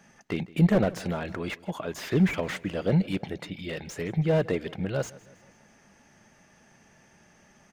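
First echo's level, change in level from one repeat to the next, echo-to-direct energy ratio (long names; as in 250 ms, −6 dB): −21.0 dB, −6.0 dB, −20.0 dB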